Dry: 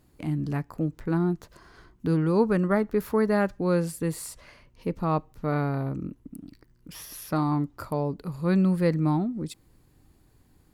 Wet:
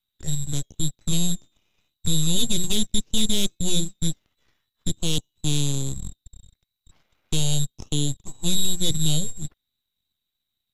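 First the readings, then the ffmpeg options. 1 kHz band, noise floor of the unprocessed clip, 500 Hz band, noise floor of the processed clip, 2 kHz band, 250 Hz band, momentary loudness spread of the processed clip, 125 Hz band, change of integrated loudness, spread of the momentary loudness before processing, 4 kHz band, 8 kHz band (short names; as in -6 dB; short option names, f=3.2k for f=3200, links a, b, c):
-15.5 dB, -62 dBFS, -10.5 dB, -82 dBFS, -6.0 dB, -3.5 dB, 10 LU, +1.0 dB, +1.0 dB, 15 LU, +22.5 dB, +18.5 dB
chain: -filter_complex "[0:a]lowshelf=f=81:g=-10.5,bandreject=f=358.5:t=h:w=4,bandreject=f=717:t=h:w=4,bandreject=f=1.0755k:t=h:w=4,bandreject=f=1.434k:t=h:w=4,bandreject=f=1.7925k:t=h:w=4,bandreject=f=2.151k:t=h:w=4,lowpass=f=3.4k:t=q:w=0.5098,lowpass=f=3.4k:t=q:w=0.6013,lowpass=f=3.4k:t=q:w=0.9,lowpass=f=3.4k:t=q:w=2.563,afreqshift=-4000,aeval=exprs='0.335*(cos(1*acos(clip(val(0)/0.335,-1,1)))-cos(1*PI/2))+0.00841*(cos(2*acos(clip(val(0)/0.335,-1,1)))-cos(2*PI/2))+0.133*(cos(5*acos(clip(val(0)/0.335,-1,1)))-cos(5*PI/2))+0.15*(cos(7*acos(clip(val(0)/0.335,-1,1)))-cos(7*PI/2))+0.106*(cos(8*acos(clip(val(0)/0.335,-1,1)))-cos(8*PI/2))':c=same,acrossover=split=590|2800[a][b][c];[b]acompressor=threshold=-47dB:ratio=6[d];[a][d][c]amix=inputs=3:normalize=0,acrusher=bits=4:mode=log:mix=0:aa=0.000001,lowshelf=f=330:g=10.5,acontrast=25,volume=-8.5dB" -ar 48000 -c:a mp2 -b:a 96k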